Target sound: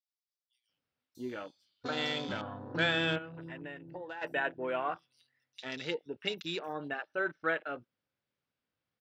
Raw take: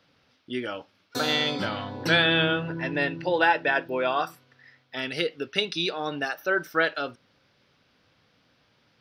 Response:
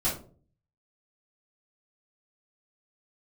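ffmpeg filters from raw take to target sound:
-filter_complex "[0:a]acrossover=split=4600[s0][s1];[s0]adelay=690[s2];[s2][s1]amix=inputs=2:normalize=0,afwtdn=0.0178,asplit=3[s3][s4][s5];[s3]afade=t=out:st=3.17:d=0.02[s6];[s4]acompressor=threshold=0.0224:ratio=8,afade=t=in:st=3.17:d=0.02,afade=t=out:st=4.21:d=0.02[s7];[s5]afade=t=in:st=4.21:d=0.02[s8];[s6][s7][s8]amix=inputs=3:normalize=0,volume=0.398"

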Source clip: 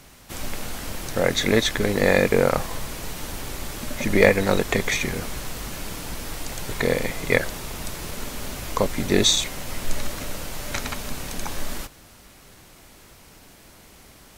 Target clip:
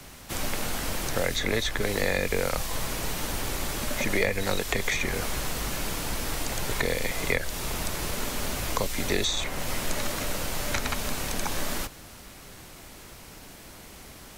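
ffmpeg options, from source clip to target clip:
-filter_complex "[0:a]acrossover=split=84|380|2300[s0][s1][s2][s3];[s0]acompressor=threshold=0.0282:ratio=4[s4];[s1]acompressor=threshold=0.01:ratio=4[s5];[s2]acompressor=threshold=0.0251:ratio=4[s6];[s3]acompressor=threshold=0.02:ratio=4[s7];[s4][s5][s6][s7]amix=inputs=4:normalize=0,volume=1.41"

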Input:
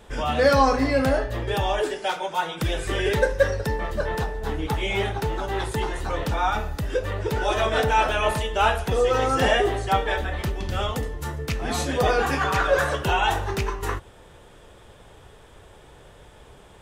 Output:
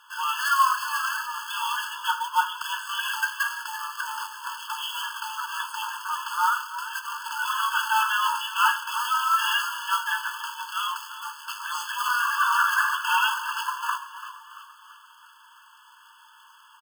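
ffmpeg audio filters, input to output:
-filter_complex "[0:a]lowpass=11000,bandreject=f=232.7:t=h:w=4,bandreject=f=465.4:t=h:w=4,asplit=2[s0][s1];[s1]asoftclip=type=hard:threshold=0.133,volume=0.631[s2];[s0][s2]amix=inputs=2:normalize=0,bass=f=250:g=-1,treble=f=4000:g=-9,acrusher=bits=3:mode=log:mix=0:aa=0.000001,asplit=6[s3][s4][s5][s6][s7][s8];[s4]adelay=338,afreqshift=70,volume=0.224[s9];[s5]adelay=676,afreqshift=140,volume=0.112[s10];[s6]adelay=1014,afreqshift=210,volume=0.0562[s11];[s7]adelay=1352,afreqshift=280,volume=0.0279[s12];[s8]adelay=1690,afreqshift=350,volume=0.014[s13];[s3][s9][s10][s11][s12][s13]amix=inputs=6:normalize=0,afftfilt=real='re*eq(mod(floor(b*sr/1024/870),2),1)':imag='im*eq(mod(floor(b*sr/1024/870),2),1)':win_size=1024:overlap=0.75"

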